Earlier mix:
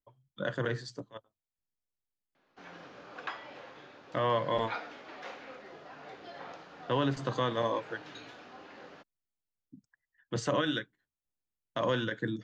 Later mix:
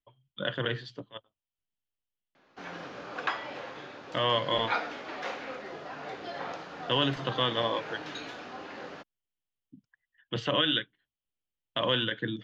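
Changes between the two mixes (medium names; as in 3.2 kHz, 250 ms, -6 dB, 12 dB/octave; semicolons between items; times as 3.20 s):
speech: add resonant low-pass 3.1 kHz, resonance Q 5.3; background +8.0 dB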